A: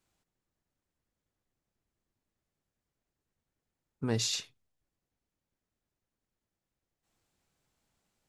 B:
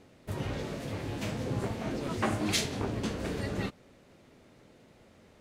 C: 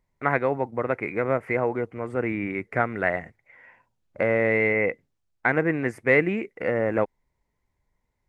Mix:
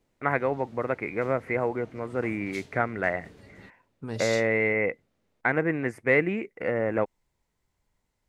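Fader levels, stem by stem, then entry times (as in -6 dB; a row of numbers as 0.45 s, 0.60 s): -4.0 dB, -17.5 dB, -2.5 dB; 0.00 s, 0.00 s, 0.00 s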